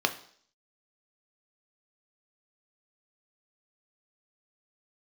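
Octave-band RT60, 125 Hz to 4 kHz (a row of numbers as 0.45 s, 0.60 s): 0.45 s, 0.55 s, 0.60 s, 0.55 s, 0.55 s, 0.65 s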